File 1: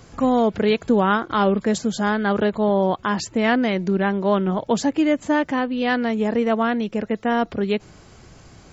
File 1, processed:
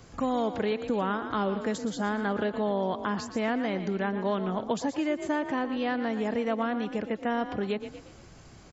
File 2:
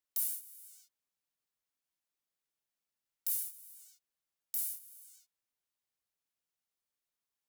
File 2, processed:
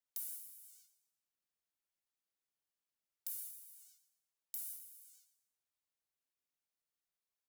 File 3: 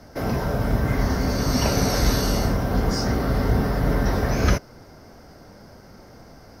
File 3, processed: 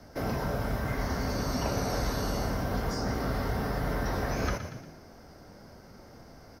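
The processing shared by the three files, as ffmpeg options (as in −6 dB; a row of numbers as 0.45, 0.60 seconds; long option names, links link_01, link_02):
-filter_complex "[0:a]asplit=5[link_01][link_02][link_03][link_04][link_05];[link_02]adelay=117,afreqshift=34,volume=-12.5dB[link_06];[link_03]adelay=234,afreqshift=68,volume=-20.2dB[link_07];[link_04]adelay=351,afreqshift=102,volume=-28dB[link_08];[link_05]adelay=468,afreqshift=136,volume=-35.7dB[link_09];[link_01][link_06][link_07][link_08][link_09]amix=inputs=5:normalize=0,acrossover=split=570|1500[link_10][link_11][link_12];[link_10]acompressor=threshold=-24dB:ratio=4[link_13];[link_11]acompressor=threshold=-26dB:ratio=4[link_14];[link_12]acompressor=threshold=-35dB:ratio=4[link_15];[link_13][link_14][link_15]amix=inputs=3:normalize=0,volume=-5dB"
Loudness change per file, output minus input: −9.0, −9.5, −9.0 LU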